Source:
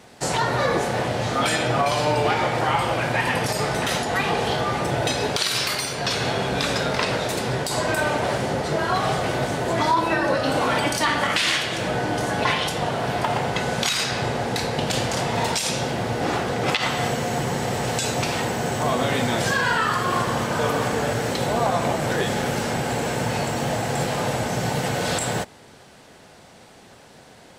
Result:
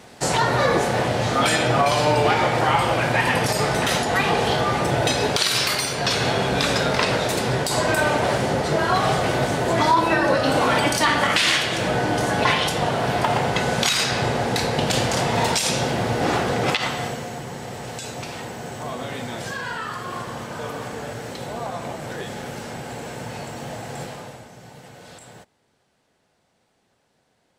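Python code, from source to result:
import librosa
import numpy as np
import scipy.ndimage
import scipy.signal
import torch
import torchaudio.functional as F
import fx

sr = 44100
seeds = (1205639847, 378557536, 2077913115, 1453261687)

y = fx.gain(x, sr, db=fx.line((16.57, 2.5), (17.4, -8.5), (24.04, -8.5), (24.52, -19.5)))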